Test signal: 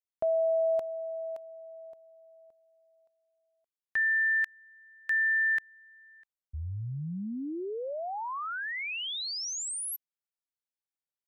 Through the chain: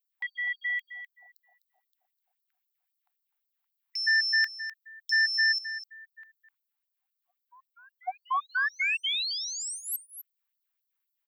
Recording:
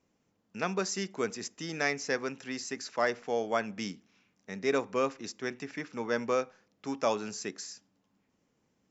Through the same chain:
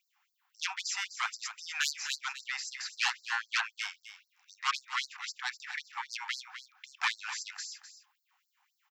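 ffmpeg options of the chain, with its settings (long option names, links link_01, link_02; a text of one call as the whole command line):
ffmpeg -i in.wav -filter_complex "[0:a]equalizer=frequency=6300:width=1.2:gain=-15,aeval=exprs='0.188*sin(PI/2*4.47*val(0)/0.188)':channel_layout=same,aexciter=amount=1:drive=1.7:freq=5700,asplit=2[link_01][link_02];[link_02]aecho=0:1:253:0.266[link_03];[link_01][link_03]amix=inputs=2:normalize=0,afftfilt=real='re*gte(b*sr/1024,710*pow(4200/710,0.5+0.5*sin(2*PI*3.8*pts/sr)))':imag='im*gte(b*sr/1024,710*pow(4200/710,0.5+0.5*sin(2*PI*3.8*pts/sr)))':win_size=1024:overlap=0.75,volume=-6dB" out.wav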